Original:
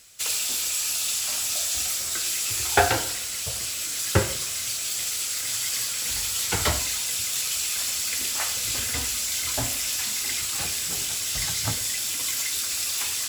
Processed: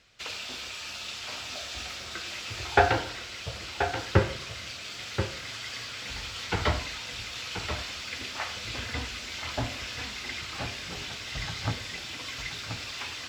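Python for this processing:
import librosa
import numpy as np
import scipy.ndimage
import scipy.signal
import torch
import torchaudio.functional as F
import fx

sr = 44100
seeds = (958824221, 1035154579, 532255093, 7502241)

y = fx.air_absorb(x, sr, metres=240.0)
y = y + 10.0 ** (-8.0 / 20.0) * np.pad(y, (int(1031 * sr / 1000.0), 0))[:len(y)]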